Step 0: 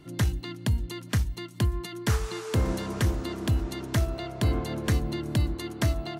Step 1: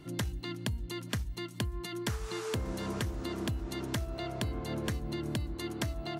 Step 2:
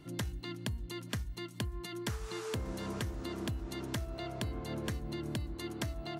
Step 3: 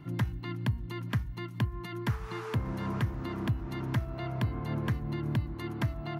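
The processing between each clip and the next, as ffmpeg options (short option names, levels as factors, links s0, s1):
-af "acompressor=threshold=0.0282:ratio=10"
-af "bandreject=f=360.7:t=h:w=4,bandreject=f=721.4:t=h:w=4,bandreject=f=1082.1:t=h:w=4,bandreject=f=1442.8:t=h:w=4,bandreject=f=1803.5:t=h:w=4,bandreject=f=2164.2:t=h:w=4,volume=0.708"
-af "equalizer=f=125:t=o:w=1:g=11,equalizer=f=250:t=o:w=1:g=3,equalizer=f=500:t=o:w=1:g=-3,equalizer=f=1000:t=o:w=1:g=7,equalizer=f=2000:t=o:w=1:g=4,equalizer=f=4000:t=o:w=1:g=-3,equalizer=f=8000:t=o:w=1:g=-12"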